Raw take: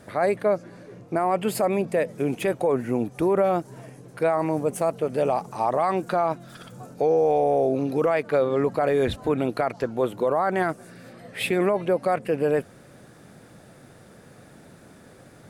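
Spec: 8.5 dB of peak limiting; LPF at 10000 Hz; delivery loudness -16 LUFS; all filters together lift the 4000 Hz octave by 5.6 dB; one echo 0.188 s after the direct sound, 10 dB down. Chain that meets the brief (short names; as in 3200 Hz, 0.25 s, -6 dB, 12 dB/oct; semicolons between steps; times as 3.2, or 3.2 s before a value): LPF 10000 Hz; bell 4000 Hz +7 dB; limiter -20.5 dBFS; echo 0.188 s -10 dB; gain +14.5 dB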